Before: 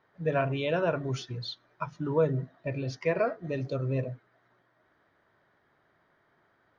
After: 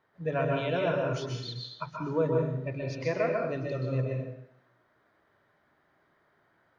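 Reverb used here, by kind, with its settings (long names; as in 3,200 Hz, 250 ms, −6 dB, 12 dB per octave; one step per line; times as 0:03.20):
dense smooth reverb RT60 0.71 s, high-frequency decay 0.95×, pre-delay 115 ms, DRR 0 dB
level −3 dB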